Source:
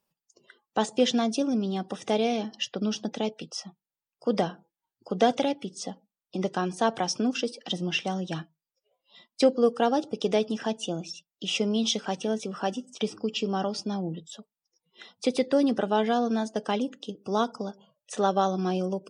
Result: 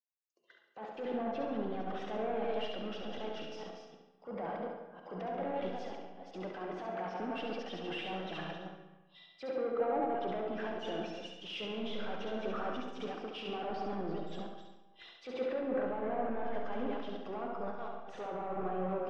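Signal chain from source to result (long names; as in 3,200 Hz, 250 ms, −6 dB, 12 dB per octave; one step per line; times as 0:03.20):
delay that plays each chunk backwards 263 ms, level −11 dB
treble cut that deepens with the level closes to 1,600 Hz, closed at −20 dBFS
low-shelf EQ 200 Hz −8 dB
brickwall limiter −32.5 dBFS, peak gain reduction 22 dB
mid-hump overdrive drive 17 dB, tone 1,400 Hz, clips at −32 dBFS
low-pass filter 3,300 Hz 12 dB per octave
on a send: flutter between parallel walls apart 11.9 metres, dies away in 0.78 s
on the sum: comb and all-pass reverb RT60 2.2 s, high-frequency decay 0.65×, pre-delay 30 ms, DRR 4 dB
multiband upward and downward expander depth 100%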